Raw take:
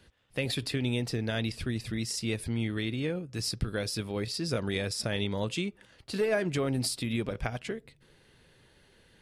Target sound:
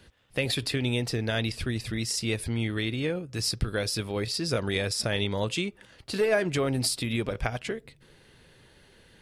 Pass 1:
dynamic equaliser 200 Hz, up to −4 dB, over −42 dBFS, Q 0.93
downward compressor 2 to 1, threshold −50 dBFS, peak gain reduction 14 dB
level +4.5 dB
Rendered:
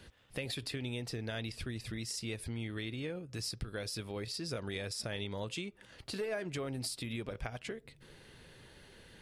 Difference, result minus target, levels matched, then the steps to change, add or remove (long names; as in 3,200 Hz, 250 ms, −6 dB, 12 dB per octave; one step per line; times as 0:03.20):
downward compressor: peak gain reduction +14 dB
remove: downward compressor 2 to 1, threshold −50 dBFS, peak gain reduction 14 dB